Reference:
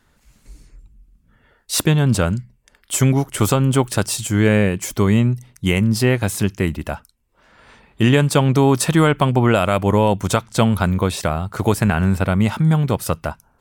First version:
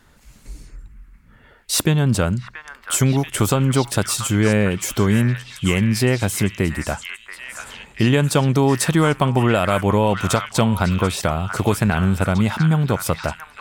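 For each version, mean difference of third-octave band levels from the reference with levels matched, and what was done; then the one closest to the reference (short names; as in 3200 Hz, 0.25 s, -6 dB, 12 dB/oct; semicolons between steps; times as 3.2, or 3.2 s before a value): 3.5 dB: compressor 1.5:1, threshold -33 dBFS, peak gain reduction 8.5 dB; delay with a stepping band-pass 0.683 s, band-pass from 1500 Hz, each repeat 0.7 oct, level -4 dB; gain +6 dB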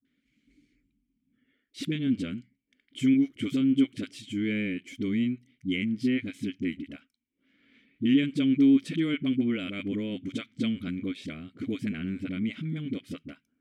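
11.0 dB: vowel filter i; dispersion highs, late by 50 ms, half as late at 390 Hz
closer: first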